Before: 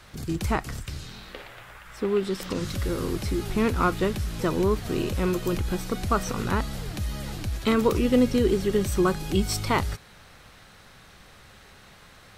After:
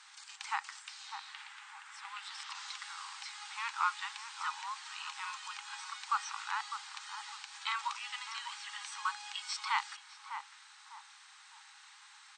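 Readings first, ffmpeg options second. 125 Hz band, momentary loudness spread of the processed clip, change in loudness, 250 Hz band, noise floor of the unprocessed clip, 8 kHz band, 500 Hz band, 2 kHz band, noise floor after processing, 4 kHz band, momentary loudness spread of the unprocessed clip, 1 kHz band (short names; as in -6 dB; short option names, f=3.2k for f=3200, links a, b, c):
under -40 dB, 18 LU, -13.5 dB, under -40 dB, -51 dBFS, -8.5 dB, under -40 dB, -5.0 dB, -58 dBFS, -4.5 dB, 14 LU, -6.0 dB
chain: -filter_complex "[0:a]afftfilt=real='re*between(b*sr/4096,780,9000)':imag='im*between(b*sr/4096,780,9000)':win_size=4096:overlap=0.75,acrossover=split=4900[a][b];[b]acompressor=threshold=-54dB:ratio=4:attack=1:release=60[c];[a][c]amix=inputs=2:normalize=0,aemphasis=mode=production:type=cd,asplit=2[d][e];[e]adelay=603,lowpass=f=1k:p=1,volume=-6dB,asplit=2[f][g];[g]adelay=603,lowpass=f=1k:p=1,volume=0.43,asplit=2[h][i];[i]adelay=603,lowpass=f=1k:p=1,volume=0.43,asplit=2[j][k];[k]adelay=603,lowpass=f=1k:p=1,volume=0.43,asplit=2[l][m];[m]adelay=603,lowpass=f=1k:p=1,volume=0.43[n];[f][h][j][l][n]amix=inputs=5:normalize=0[o];[d][o]amix=inputs=2:normalize=0,volume=-6dB"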